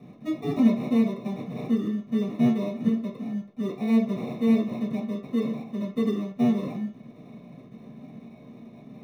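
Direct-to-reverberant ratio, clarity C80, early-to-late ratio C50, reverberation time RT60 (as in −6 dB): −7.5 dB, 12.0 dB, 7.0 dB, 0.45 s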